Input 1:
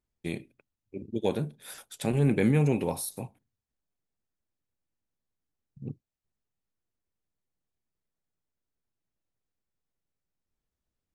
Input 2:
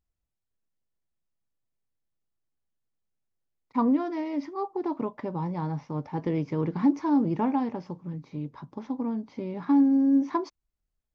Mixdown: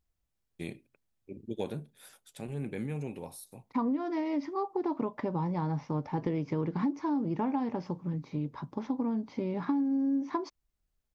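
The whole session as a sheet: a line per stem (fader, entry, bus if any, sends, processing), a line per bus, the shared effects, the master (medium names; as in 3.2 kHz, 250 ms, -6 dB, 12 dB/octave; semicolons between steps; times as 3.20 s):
1.59 s -5.5 dB -> 2.33 s -12.5 dB, 0.35 s, no send, none
+2.5 dB, 0.00 s, no send, none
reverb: none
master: compression 5:1, threshold -28 dBFS, peak gain reduction 12.5 dB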